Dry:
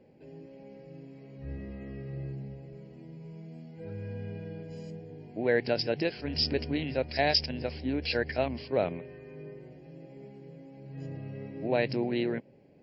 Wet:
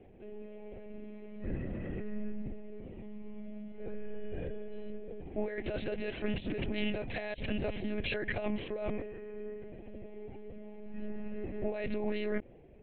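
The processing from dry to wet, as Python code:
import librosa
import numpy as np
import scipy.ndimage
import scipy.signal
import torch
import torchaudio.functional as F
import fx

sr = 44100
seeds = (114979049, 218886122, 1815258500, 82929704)

y = fx.over_compress(x, sr, threshold_db=-33.0, ratio=-1.0)
y = fx.lpc_monotone(y, sr, seeds[0], pitch_hz=210.0, order=16)
y = fx.doppler_dist(y, sr, depth_ms=0.11)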